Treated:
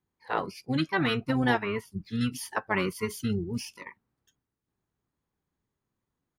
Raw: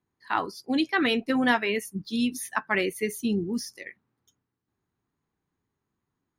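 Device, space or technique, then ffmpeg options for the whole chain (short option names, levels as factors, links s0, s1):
octave pedal: -filter_complex "[0:a]asettb=1/sr,asplit=3[s0][s1][s2];[s0]atrim=end=1.624[s3];[s1]atrim=start=1.62:end=2.21,asetpts=PTS-STARTPTS,afade=t=in:d=0.004:c=qsin,afade=t=out:st=0.586:d=0.004:c=qsin,acrossover=split=2600[s4][s5];[s5]acompressor=threshold=0.00355:ratio=4:attack=1:release=60[s6];[s4][s6]amix=inputs=2:normalize=0[s7];[s2]atrim=start=2.206[s8];[s3][s7]acrossfade=d=0.004:c1=hsin:c2=qsin[s9];[s9][s8]acrossfade=d=0.004:c1=qsin:c2=hsin,asplit=2[s10][s11];[s11]asetrate=22050,aresample=44100,atempo=2,volume=0.631[s12];[s10][s12]amix=inputs=2:normalize=0,volume=0.631"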